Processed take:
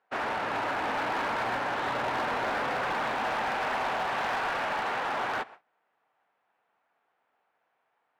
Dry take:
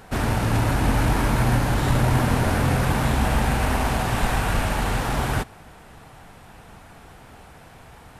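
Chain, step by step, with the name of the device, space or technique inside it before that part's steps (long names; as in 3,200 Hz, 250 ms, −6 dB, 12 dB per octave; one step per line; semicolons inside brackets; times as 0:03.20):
walkie-talkie (band-pass filter 580–2,400 Hz; hard clipping −26 dBFS, distortion −13 dB; noise gate −45 dBFS, range −25 dB)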